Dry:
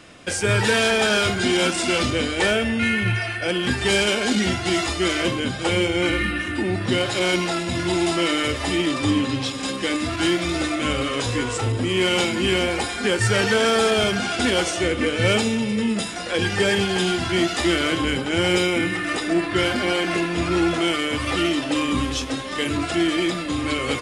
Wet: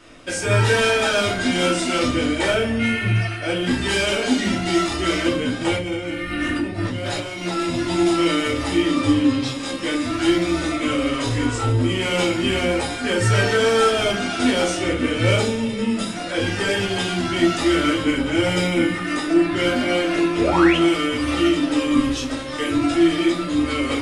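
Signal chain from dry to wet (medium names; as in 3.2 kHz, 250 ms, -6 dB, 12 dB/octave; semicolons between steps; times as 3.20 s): 5.76–7.75 s: compressor with a negative ratio -27 dBFS, ratio -1; 20.38–20.77 s: painted sound rise 380–3400 Hz -22 dBFS; simulated room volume 170 m³, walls furnished, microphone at 2.8 m; trim -6 dB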